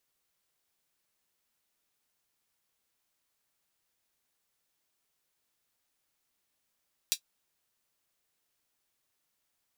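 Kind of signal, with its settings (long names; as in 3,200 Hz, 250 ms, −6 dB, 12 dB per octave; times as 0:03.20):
closed synth hi-hat, high-pass 3,700 Hz, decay 0.09 s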